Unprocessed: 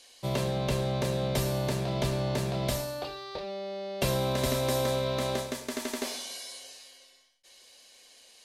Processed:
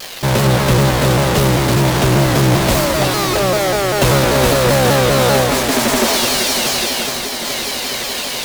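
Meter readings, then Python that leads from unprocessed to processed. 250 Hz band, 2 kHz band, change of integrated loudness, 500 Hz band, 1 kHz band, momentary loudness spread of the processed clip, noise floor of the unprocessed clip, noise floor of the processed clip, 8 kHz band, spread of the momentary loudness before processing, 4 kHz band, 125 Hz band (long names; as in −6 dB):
+17.5 dB, +21.5 dB, +17.0 dB, +15.5 dB, +19.5 dB, 7 LU, −57 dBFS, −23 dBFS, +20.5 dB, 10 LU, +19.0 dB, +16.5 dB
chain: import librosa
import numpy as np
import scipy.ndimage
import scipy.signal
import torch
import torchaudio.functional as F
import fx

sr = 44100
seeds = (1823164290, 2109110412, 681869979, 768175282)

p1 = fx.halfwave_hold(x, sr)
p2 = fx.rider(p1, sr, range_db=5, speed_s=2.0)
p3 = fx.fuzz(p2, sr, gain_db=49.0, gate_db=-52.0)
p4 = p2 + F.gain(torch.from_numpy(p3), -12.0).numpy()
p5 = fx.echo_alternate(p4, sr, ms=211, hz=2400.0, feedback_pct=87, wet_db=-6)
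p6 = fx.vibrato_shape(p5, sr, shape='saw_down', rate_hz=5.1, depth_cents=160.0)
y = F.gain(torch.from_numpy(p6), 5.0).numpy()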